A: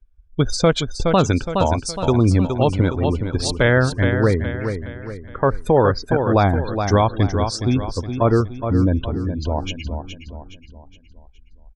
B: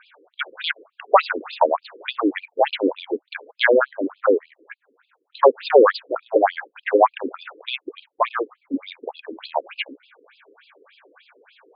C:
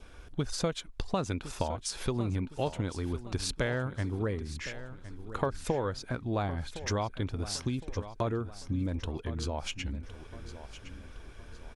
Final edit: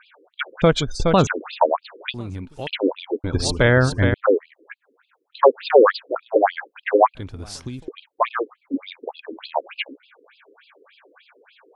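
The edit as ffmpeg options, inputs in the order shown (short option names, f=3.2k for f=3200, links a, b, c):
-filter_complex "[0:a]asplit=2[a][b];[2:a]asplit=2[c][d];[1:a]asplit=5[e][f][g][h][i];[e]atrim=end=0.622[j];[a]atrim=start=0.618:end=1.272[k];[f]atrim=start=1.268:end=2.142[l];[c]atrim=start=2.138:end=2.672[m];[g]atrim=start=2.668:end=3.242[n];[b]atrim=start=3.238:end=4.142[o];[h]atrim=start=4.138:end=7.152[p];[d]atrim=start=7.148:end=7.882[q];[i]atrim=start=7.878[r];[j][k]acrossfade=d=0.004:c1=hsin:c2=hsin[s];[s][l]acrossfade=d=0.004:c1=hsin:c2=hsin[t];[t][m]acrossfade=d=0.004:c1=hsin:c2=hsin[u];[u][n]acrossfade=d=0.004:c1=hsin:c2=hsin[v];[v][o]acrossfade=d=0.004:c1=hsin:c2=hsin[w];[w][p]acrossfade=d=0.004:c1=hsin:c2=hsin[x];[x][q]acrossfade=d=0.004:c1=hsin:c2=hsin[y];[y][r]acrossfade=d=0.004:c1=hsin:c2=hsin"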